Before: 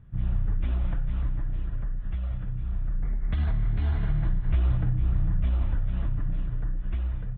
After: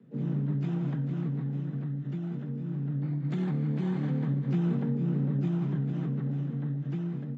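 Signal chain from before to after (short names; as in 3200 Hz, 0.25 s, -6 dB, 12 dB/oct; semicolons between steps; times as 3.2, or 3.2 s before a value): dynamic EQ 740 Hz, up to +3 dB, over -49 dBFS, Q 0.88; frequency shift +110 Hz; harmoniser +12 st -11 dB; gain -5.5 dB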